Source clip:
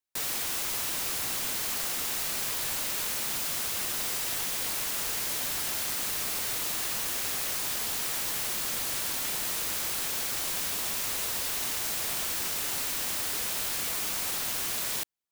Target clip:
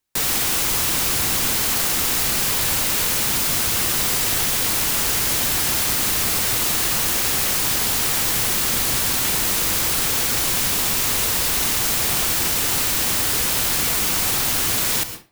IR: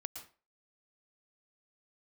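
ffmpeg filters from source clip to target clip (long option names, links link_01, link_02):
-filter_complex "[0:a]asplit=2[link_01][link_02];[link_02]equalizer=frequency=640:width=7.7:gain=-5.5[link_03];[1:a]atrim=start_sample=2205,lowshelf=frequency=330:gain=10.5[link_04];[link_03][link_04]afir=irnorm=-1:irlink=0,volume=5.5dB[link_05];[link_01][link_05]amix=inputs=2:normalize=0,volume=3.5dB"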